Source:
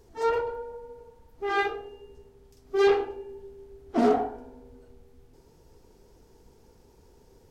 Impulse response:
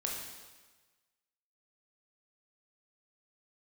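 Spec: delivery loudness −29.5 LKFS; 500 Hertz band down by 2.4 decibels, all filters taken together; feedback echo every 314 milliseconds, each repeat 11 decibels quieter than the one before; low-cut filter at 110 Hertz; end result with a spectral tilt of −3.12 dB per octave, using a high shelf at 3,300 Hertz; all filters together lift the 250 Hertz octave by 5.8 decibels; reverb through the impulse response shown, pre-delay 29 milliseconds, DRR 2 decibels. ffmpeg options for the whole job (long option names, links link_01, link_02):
-filter_complex "[0:a]highpass=110,equalizer=frequency=250:width_type=o:gain=8.5,equalizer=frequency=500:width_type=o:gain=-7,highshelf=frequency=3300:gain=8,aecho=1:1:314|628|942:0.282|0.0789|0.0221,asplit=2[link_01][link_02];[1:a]atrim=start_sample=2205,adelay=29[link_03];[link_02][link_03]afir=irnorm=-1:irlink=0,volume=-4.5dB[link_04];[link_01][link_04]amix=inputs=2:normalize=0,volume=-4.5dB"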